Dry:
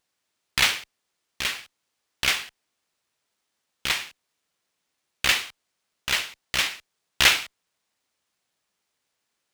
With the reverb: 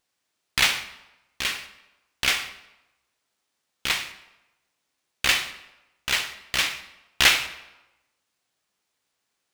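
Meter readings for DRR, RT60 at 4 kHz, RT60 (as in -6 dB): 9.0 dB, 0.75 s, 1.0 s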